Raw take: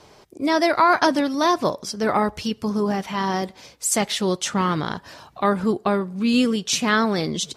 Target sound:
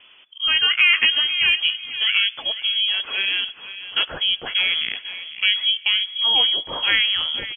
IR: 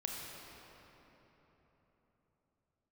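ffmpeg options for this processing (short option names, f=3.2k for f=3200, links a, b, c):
-filter_complex "[0:a]asplit=2[a][b];[b]adelay=499,lowpass=f=2.3k:p=1,volume=-12.5dB,asplit=2[c][d];[d]adelay=499,lowpass=f=2.3k:p=1,volume=0.28,asplit=2[e][f];[f]adelay=499,lowpass=f=2.3k:p=1,volume=0.28[g];[a][c][e][g]amix=inputs=4:normalize=0,asplit=2[h][i];[1:a]atrim=start_sample=2205,afade=t=out:st=0.39:d=0.01,atrim=end_sample=17640,asetrate=41013,aresample=44100[j];[i][j]afir=irnorm=-1:irlink=0,volume=-22dB[k];[h][k]amix=inputs=2:normalize=0,lowpass=f=3k:t=q:w=0.5098,lowpass=f=3k:t=q:w=0.6013,lowpass=f=3k:t=q:w=0.9,lowpass=f=3k:t=q:w=2.563,afreqshift=-3500"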